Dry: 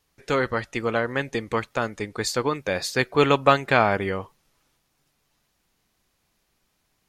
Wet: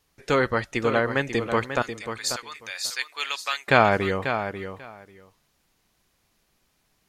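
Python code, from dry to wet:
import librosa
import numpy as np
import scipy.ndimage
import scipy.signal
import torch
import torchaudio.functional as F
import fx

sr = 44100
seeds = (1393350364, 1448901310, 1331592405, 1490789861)

y = fx.bessel_highpass(x, sr, hz=2900.0, order=2, at=(1.82, 3.68))
y = fx.echo_feedback(y, sr, ms=541, feedback_pct=15, wet_db=-9)
y = F.gain(torch.from_numpy(y), 1.5).numpy()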